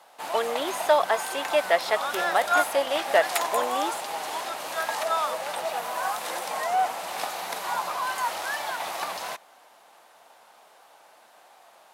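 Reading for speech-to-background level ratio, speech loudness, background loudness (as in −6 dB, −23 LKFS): 2.5 dB, −26.5 LKFS, −29.0 LKFS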